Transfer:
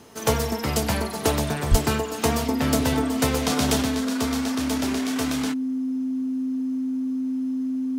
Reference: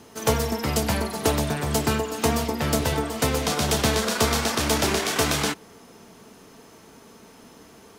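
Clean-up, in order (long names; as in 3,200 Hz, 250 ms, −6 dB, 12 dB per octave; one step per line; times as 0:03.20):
notch filter 260 Hz, Q 30
0:01.70–0:01.82: high-pass filter 140 Hz 24 dB per octave
level 0 dB, from 0:03.83 +7 dB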